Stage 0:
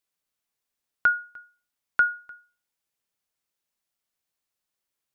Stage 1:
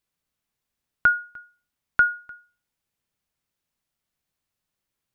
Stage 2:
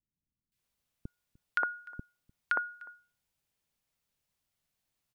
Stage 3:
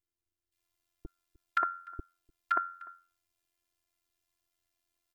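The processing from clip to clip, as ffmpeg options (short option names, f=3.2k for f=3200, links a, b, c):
-af "bass=f=250:g=9,treble=f=4k:g=-3,volume=2.5dB"
-filter_complex "[0:a]acompressor=threshold=-24dB:ratio=3,acrossover=split=310|1400[a][b][c];[c]adelay=520[d];[b]adelay=580[e];[a][e][d]amix=inputs=3:normalize=0"
-af "afftfilt=real='hypot(re,im)*cos(PI*b)':imag='0':win_size=512:overlap=0.75,tremolo=f=88:d=0.667,volume=6.5dB"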